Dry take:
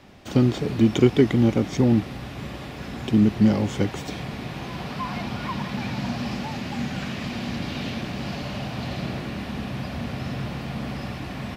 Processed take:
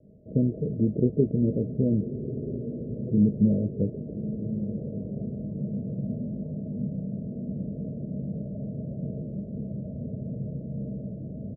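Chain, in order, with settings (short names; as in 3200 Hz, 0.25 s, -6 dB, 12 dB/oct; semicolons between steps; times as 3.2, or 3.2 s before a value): rippled Chebyshev low-pass 650 Hz, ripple 9 dB; doubler 20 ms -11 dB; diffused feedback echo 1.233 s, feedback 46%, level -9.5 dB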